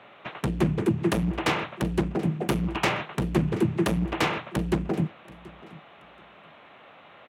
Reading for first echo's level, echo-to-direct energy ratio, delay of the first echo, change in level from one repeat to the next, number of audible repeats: -21.0 dB, -21.0 dB, 0.73 s, -13.0 dB, 2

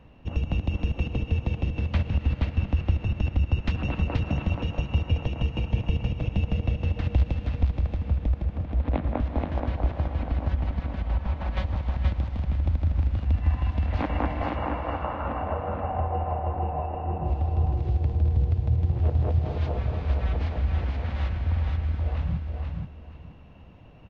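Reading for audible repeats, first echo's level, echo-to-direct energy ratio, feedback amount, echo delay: 3, -4.0 dB, -4.0 dB, 23%, 0.478 s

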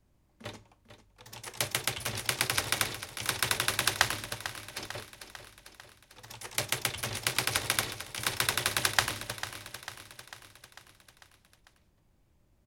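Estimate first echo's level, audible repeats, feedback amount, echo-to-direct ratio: -12.0 dB, 5, 58%, -10.0 dB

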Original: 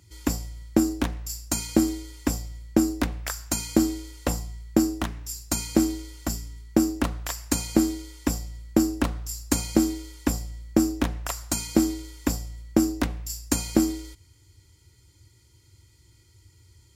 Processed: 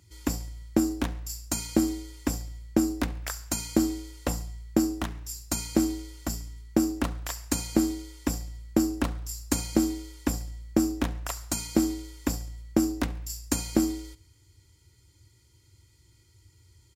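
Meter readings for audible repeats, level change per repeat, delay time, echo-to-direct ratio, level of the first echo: 2, -7.0 dB, 69 ms, -21.0 dB, -22.0 dB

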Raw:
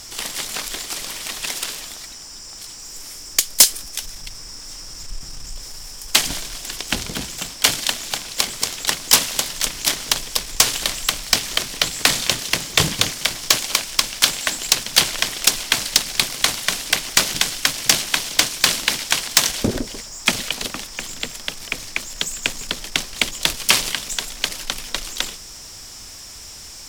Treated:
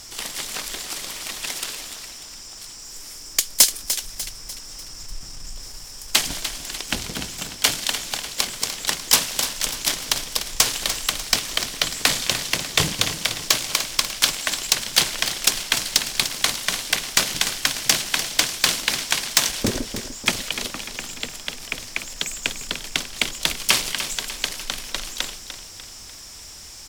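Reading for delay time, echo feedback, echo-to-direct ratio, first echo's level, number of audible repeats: 0.297 s, 49%, -9.5 dB, -10.5 dB, 4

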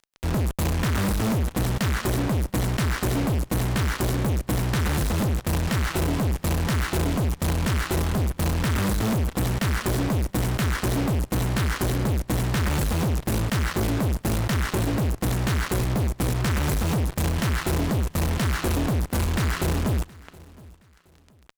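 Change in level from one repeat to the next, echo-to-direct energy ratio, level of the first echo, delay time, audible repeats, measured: -9.5 dB, -22.5 dB, -23.0 dB, 0.72 s, 2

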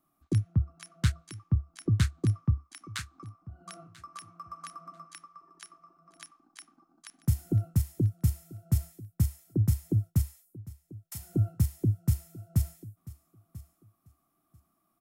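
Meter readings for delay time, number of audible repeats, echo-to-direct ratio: 0.99 s, 2, -19.0 dB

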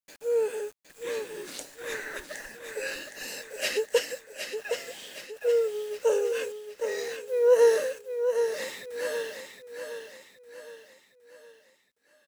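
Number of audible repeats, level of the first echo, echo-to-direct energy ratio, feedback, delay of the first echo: 5, -7.0 dB, -6.0 dB, 45%, 0.765 s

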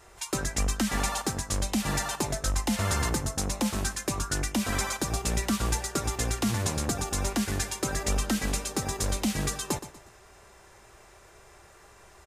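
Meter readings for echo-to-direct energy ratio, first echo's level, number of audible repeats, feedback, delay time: -12.5 dB, -13.0 dB, 3, 35%, 0.12 s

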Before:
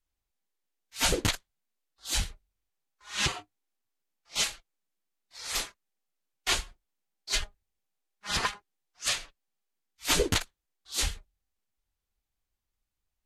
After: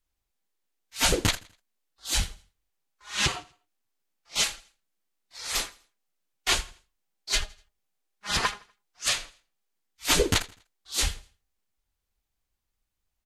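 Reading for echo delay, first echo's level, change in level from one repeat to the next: 82 ms, -21.5 dB, -8.5 dB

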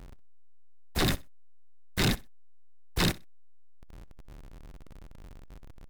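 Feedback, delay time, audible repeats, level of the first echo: 20%, 63 ms, 2, -21.0 dB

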